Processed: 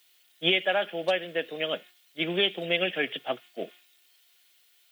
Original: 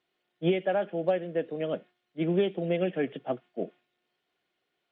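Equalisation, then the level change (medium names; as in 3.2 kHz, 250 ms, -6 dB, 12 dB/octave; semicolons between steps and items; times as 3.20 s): tilt EQ +4.5 dB/octave; bass shelf 110 Hz +5 dB; treble shelf 2.6 kHz +12 dB; +2.5 dB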